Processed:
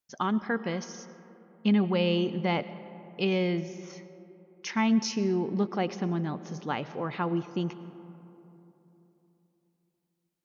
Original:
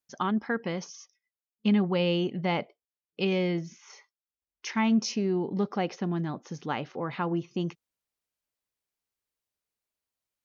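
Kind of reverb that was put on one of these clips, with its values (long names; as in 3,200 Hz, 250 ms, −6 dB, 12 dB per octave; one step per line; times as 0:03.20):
comb and all-pass reverb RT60 3.4 s, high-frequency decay 0.35×, pre-delay 70 ms, DRR 14 dB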